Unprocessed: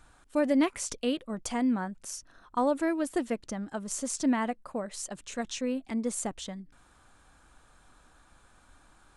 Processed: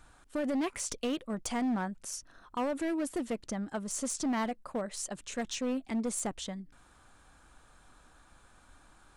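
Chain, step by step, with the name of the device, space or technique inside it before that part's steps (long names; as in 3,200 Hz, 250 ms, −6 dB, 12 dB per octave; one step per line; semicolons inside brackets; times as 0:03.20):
limiter into clipper (brickwall limiter −22 dBFS, peak gain reduction 7 dB; hard clipping −27.5 dBFS, distortion −14 dB)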